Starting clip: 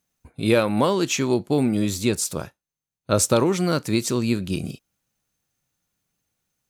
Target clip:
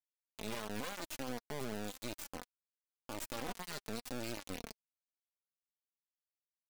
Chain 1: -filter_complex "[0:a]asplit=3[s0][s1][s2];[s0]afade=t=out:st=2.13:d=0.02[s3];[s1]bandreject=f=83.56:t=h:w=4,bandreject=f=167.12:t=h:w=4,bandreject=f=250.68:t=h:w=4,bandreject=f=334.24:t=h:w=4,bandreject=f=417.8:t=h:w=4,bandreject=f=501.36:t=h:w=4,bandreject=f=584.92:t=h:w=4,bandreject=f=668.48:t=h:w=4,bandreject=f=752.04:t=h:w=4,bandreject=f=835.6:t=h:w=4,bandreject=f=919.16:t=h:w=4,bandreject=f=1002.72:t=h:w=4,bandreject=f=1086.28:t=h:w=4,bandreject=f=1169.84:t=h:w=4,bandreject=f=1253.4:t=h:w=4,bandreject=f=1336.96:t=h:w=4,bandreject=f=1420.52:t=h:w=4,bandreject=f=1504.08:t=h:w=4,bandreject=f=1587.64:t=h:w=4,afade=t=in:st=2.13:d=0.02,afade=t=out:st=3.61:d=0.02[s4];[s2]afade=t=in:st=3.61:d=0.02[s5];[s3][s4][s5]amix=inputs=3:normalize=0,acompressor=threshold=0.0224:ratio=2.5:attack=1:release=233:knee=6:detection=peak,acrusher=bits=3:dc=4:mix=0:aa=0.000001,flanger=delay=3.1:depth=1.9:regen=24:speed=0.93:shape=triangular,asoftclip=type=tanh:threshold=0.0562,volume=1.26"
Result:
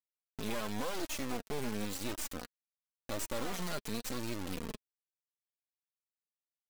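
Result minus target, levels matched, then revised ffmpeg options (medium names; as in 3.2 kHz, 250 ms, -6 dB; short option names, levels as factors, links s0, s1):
compression: peak gain reduction -6.5 dB
-filter_complex "[0:a]asplit=3[s0][s1][s2];[s0]afade=t=out:st=2.13:d=0.02[s3];[s1]bandreject=f=83.56:t=h:w=4,bandreject=f=167.12:t=h:w=4,bandreject=f=250.68:t=h:w=4,bandreject=f=334.24:t=h:w=4,bandreject=f=417.8:t=h:w=4,bandreject=f=501.36:t=h:w=4,bandreject=f=584.92:t=h:w=4,bandreject=f=668.48:t=h:w=4,bandreject=f=752.04:t=h:w=4,bandreject=f=835.6:t=h:w=4,bandreject=f=919.16:t=h:w=4,bandreject=f=1002.72:t=h:w=4,bandreject=f=1086.28:t=h:w=4,bandreject=f=1169.84:t=h:w=4,bandreject=f=1253.4:t=h:w=4,bandreject=f=1336.96:t=h:w=4,bandreject=f=1420.52:t=h:w=4,bandreject=f=1504.08:t=h:w=4,bandreject=f=1587.64:t=h:w=4,afade=t=in:st=2.13:d=0.02,afade=t=out:st=3.61:d=0.02[s4];[s2]afade=t=in:st=3.61:d=0.02[s5];[s3][s4][s5]amix=inputs=3:normalize=0,acompressor=threshold=0.00668:ratio=2.5:attack=1:release=233:knee=6:detection=peak,acrusher=bits=3:dc=4:mix=0:aa=0.000001,flanger=delay=3.1:depth=1.9:regen=24:speed=0.93:shape=triangular,asoftclip=type=tanh:threshold=0.0562,volume=1.26"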